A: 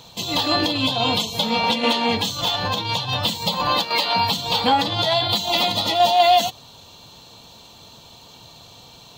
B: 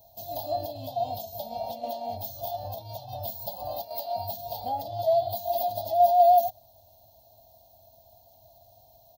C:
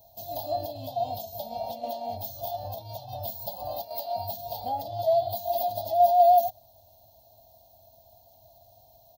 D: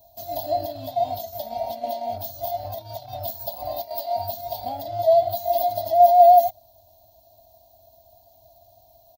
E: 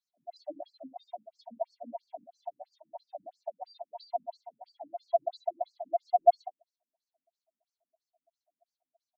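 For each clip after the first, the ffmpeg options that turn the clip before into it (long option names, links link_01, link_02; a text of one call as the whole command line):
ffmpeg -i in.wav -af "firequalizer=gain_entry='entry(100,0);entry(160,-17);entry(260,-12);entry(450,-19);entry(650,11);entry(1100,-28);entry(2200,-30);entry(5100,-8);entry(8000,-15);entry(15000,13)':delay=0.05:min_phase=1,volume=-8.5dB" out.wav
ffmpeg -i in.wav -af anull out.wav
ffmpeg -i in.wav -filter_complex "[0:a]aecho=1:1:3:0.53,asplit=2[link_01][link_02];[link_02]aeval=exprs='sgn(val(0))*max(abs(val(0))-0.0075,0)':channel_layout=same,volume=-8dB[link_03];[link_01][link_03]amix=inputs=2:normalize=0" out.wav
ffmpeg -i in.wav -af "afftdn=noise_reduction=19:noise_floor=-35,afftfilt=real='re*between(b*sr/1024,210*pow(6400/210,0.5+0.5*sin(2*PI*3*pts/sr))/1.41,210*pow(6400/210,0.5+0.5*sin(2*PI*3*pts/sr))*1.41)':imag='im*between(b*sr/1024,210*pow(6400/210,0.5+0.5*sin(2*PI*3*pts/sr))/1.41,210*pow(6400/210,0.5+0.5*sin(2*PI*3*pts/sr))*1.41)':win_size=1024:overlap=0.75,volume=-3dB" out.wav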